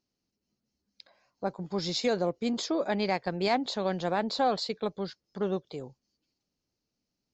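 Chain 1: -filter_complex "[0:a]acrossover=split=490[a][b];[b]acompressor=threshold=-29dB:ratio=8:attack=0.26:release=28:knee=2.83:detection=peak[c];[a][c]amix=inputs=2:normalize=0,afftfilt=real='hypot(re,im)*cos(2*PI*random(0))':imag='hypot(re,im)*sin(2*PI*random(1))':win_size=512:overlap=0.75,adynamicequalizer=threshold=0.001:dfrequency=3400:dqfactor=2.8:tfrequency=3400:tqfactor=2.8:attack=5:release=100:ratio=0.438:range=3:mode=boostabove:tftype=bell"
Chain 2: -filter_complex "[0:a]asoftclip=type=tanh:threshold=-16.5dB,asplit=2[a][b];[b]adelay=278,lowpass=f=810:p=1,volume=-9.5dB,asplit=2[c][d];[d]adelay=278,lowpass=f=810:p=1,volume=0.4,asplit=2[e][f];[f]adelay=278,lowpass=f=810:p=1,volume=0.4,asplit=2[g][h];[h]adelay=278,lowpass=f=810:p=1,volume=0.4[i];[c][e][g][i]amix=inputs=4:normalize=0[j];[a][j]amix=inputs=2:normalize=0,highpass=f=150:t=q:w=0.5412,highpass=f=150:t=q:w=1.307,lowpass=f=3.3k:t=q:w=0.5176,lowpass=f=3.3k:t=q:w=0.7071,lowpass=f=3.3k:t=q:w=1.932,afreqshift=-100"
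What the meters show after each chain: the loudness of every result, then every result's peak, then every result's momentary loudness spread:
-38.0, -32.0 LUFS; -22.0, -17.0 dBFS; 10, 10 LU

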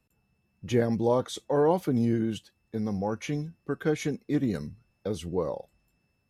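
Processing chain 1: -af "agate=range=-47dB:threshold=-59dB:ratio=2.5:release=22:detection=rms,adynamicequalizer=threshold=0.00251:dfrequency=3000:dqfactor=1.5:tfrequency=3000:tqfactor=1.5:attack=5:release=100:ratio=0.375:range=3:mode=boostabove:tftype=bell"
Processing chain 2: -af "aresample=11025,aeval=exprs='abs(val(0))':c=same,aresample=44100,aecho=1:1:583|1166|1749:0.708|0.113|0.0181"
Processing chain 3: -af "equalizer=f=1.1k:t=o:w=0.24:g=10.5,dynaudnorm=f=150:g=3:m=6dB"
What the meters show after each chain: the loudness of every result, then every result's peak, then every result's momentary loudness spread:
-29.0, -32.5, -23.0 LUFS; -12.5, -9.0, -6.0 dBFS; 13, 9, 13 LU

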